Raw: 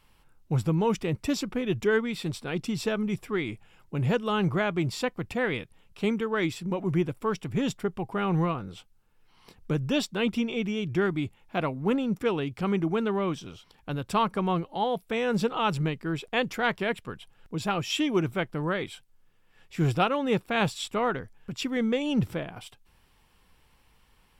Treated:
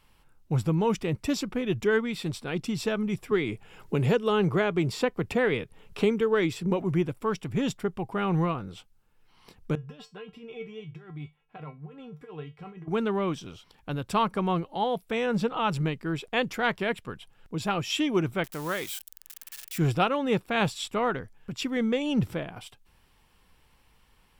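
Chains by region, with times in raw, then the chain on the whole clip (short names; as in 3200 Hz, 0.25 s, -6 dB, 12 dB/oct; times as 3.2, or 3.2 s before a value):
3.31–6.82 bell 430 Hz +7.5 dB 0.29 oct + three-band squash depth 70%
9.75–12.88 tone controls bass -4 dB, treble -13 dB + negative-ratio compressor -29 dBFS, ratio -0.5 + resonator 150 Hz, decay 0.21 s, harmonics odd, mix 90%
15.26–15.72 high shelf 3900 Hz -6.5 dB + notch 390 Hz, Q 5.8
18.44–19.78 switching spikes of -29.5 dBFS + low shelf 310 Hz -8.5 dB
whole clip: dry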